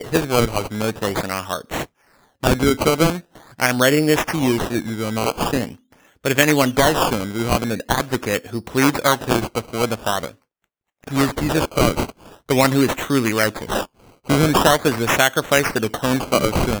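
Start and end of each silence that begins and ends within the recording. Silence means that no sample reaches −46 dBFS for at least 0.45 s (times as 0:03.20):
0:10.35–0:11.03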